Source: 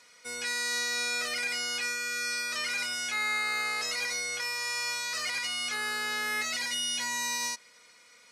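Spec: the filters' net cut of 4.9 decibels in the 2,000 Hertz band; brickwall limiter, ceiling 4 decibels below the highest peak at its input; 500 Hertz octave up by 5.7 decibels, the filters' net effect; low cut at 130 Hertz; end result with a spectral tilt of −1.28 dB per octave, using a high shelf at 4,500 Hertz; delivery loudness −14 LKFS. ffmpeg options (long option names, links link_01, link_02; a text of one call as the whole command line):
ffmpeg -i in.wav -af "highpass=130,equalizer=frequency=500:width_type=o:gain=6.5,equalizer=frequency=2000:width_type=o:gain=-5.5,highshelf=frequency=4500:gain=-3.5,volume=21dB,alimiter=limit=-7dB:level=0:latency=1" out.wav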